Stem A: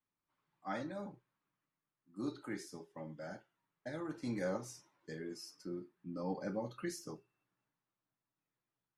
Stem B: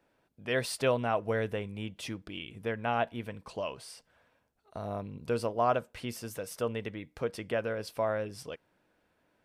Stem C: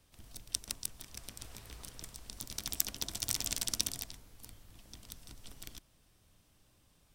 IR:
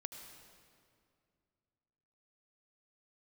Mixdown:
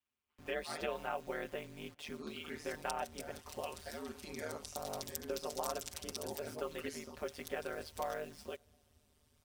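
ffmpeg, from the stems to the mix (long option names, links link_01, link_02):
-filter_complex "[0:a]equalizer=frequency=2800:width_type=o:width=0.65:gain=11,volume=-2.5dB[link_01];[1:a]aemphasis=mode=reproduction:type=cd,acrusher=bits=8:mix=0:aa=0.000001,volume=-4dB,asplit=2[link_02][link_03];[link_03]volume=-22dB[link_04];[2:a]adelay=2350,volume=-3.5dB[link_05];[3:a]atrim=start_sample=2205[link_06];[link_04][link_06]afir=irnorm=-1:irlink=0[link_07];[link_01][link_02][link_05][link_07]amix=inputs=4:normalize=0,aecho=1:1:6.1:0.83,acrossover=split=300|1300[link_08][link_09][link_10];[link_08]acompressor=threshold=-53dB:ratio=4[link_11];[link_09]acompressor=threshold=-36dB:ratio=4[link_12];[link_10]acompressor=threshold=-39dB:ratio=4[link_13];[link_11][link_12][link_13]amix=inputs=3:normalize=0,aeval=exprs='val(0)*sin(2*PI*76*n/s)':channel_layout=same"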